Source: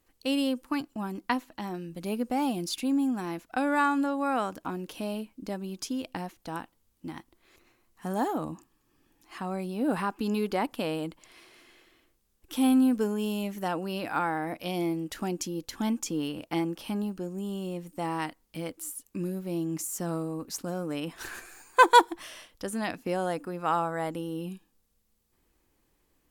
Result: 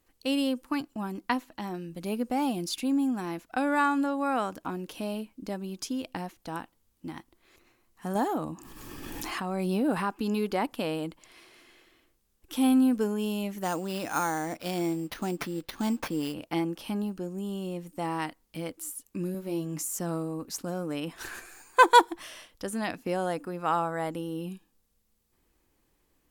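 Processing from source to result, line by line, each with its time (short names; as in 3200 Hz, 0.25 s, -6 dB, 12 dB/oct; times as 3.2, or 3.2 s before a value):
8.15–10.04 backwards sustainer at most 20 dB/s
13.63–16.34 sample-rate reducer 7800 Hz
19.33–19.99 doubler 14 ms -5 dB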